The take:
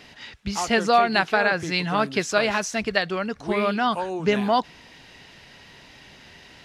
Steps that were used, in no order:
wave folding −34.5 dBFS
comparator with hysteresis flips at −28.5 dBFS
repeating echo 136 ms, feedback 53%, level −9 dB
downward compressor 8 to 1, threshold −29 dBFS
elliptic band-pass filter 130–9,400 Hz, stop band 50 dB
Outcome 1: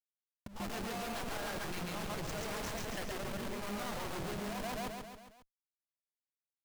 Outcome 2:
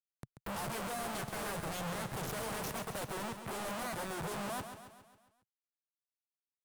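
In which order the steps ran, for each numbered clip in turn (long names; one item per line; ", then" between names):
elliptic band-pass filter, then comparator with hysteresis, then repeating echo, then downward compressor, then wave folding
comparator with hysteresis, then elliptic band-pass filter, then downward compressor, then wave folding, then repeating echo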